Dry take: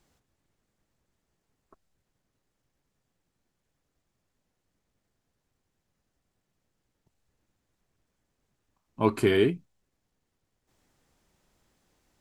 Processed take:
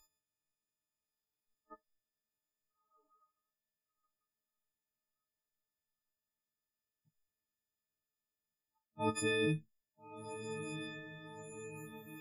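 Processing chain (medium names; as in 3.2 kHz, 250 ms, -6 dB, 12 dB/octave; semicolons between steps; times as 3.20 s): partials quantised in pitch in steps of 6 st; reverse; compression 8:1, threshold -32 dBFS, peak gain reduction 15.5 dB; reverse; echo that smears into a reverb 1337 ms, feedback 60%, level -8.5 dB; spectral noise reduction 26 dB; trim +1 dB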